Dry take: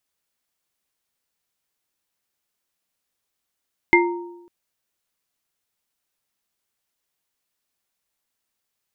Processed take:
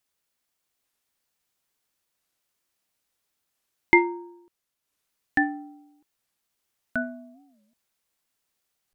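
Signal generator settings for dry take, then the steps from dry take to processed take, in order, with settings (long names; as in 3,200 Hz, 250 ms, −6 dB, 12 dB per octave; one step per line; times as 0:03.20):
inharmonic partials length 0.55 s, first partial 348 Hz, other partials 928/2,100 Hz, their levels −3/5 dB, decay 0.94 s, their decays 0.74/0.23 s, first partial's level −13 dB
transient designer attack −1 dB, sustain −8 dB
delay with pitch and tempo change per echo 699 ms, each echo −3 semitones, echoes 2, each echo −6 dB
wow of a warped record 45 rpm, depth 250 cents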